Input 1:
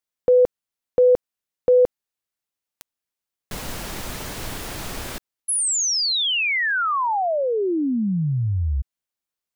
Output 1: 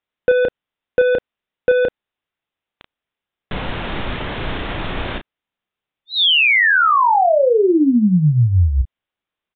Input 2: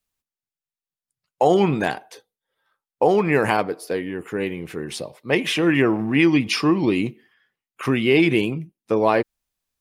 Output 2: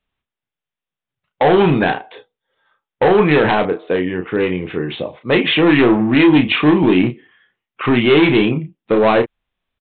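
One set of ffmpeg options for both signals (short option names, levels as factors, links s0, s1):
-filter_complex "[0:a]aresample=8000,asoftclip=type=hard:threshold=0.15,aresample=44100,asplit=2[s0][s1];[s1]adelay=33,volume=0.447[s2];[s0][s2]amix=inputs=2:normalize=0,volume=2.37"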